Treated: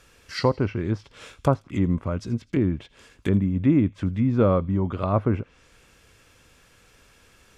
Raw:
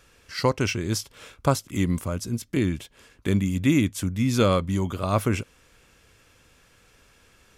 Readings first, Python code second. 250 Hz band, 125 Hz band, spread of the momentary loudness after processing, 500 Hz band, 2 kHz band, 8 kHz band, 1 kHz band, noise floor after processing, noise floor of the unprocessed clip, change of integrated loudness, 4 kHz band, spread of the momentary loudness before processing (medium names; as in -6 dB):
+1.5 dB, +1.5 dB, 9 LU, +1.5 dB, -5.5 dB, under -15 dB, -1.0 dB, -57 dBFS, -59 dBFS, +1.0 dB, no reading, 9 LU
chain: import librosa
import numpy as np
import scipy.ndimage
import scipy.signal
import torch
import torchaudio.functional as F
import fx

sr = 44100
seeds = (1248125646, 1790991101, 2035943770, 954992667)

y = fx.env_lowpass_down(x, sr, base_hz=1100.0, full_db=-21.0)
y = fx.echo_wet_highpass(y, sr, ms=83, feedback_pct=47, hz=2900.0, wet_db=-17.5)
y = y * librosa.db_to_amplitude(1.5)